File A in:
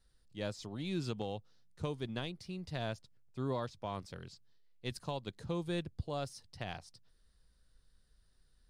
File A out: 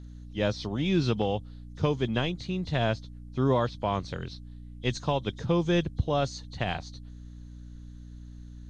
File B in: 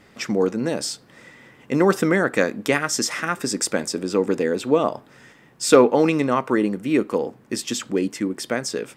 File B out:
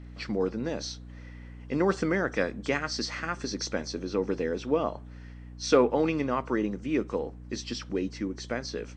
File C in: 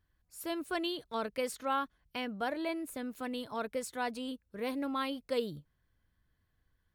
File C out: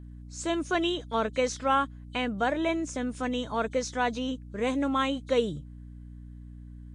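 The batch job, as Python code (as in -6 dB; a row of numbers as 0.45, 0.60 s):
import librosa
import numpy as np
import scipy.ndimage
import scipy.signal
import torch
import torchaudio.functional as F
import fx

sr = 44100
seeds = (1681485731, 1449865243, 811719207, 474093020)

y = fx.freq_compress(x, sr, knee_hz=3000.0, ratio=1.5)
y = fx.add_hum(y, sr, base_hz=60, snr_db=14)
y = y * 10.0 ** (-30 / 20.0) / np.sqrt(np.mean(np.square(y)))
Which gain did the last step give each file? +12.0, -8.0, +8.0 dB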